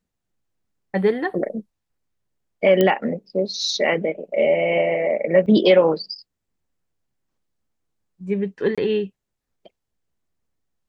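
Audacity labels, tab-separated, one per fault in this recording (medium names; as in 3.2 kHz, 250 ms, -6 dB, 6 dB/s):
2.810000	2.810000	pop -6 dBFS
5.460000	5.460000	dropout 4.7 ms
8.750000	8.780000	dropout 26 ms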